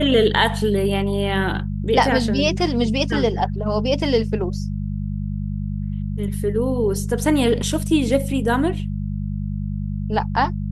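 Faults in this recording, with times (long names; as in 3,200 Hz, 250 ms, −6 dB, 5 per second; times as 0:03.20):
mains hum 50 Hz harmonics 4 −25 dBFS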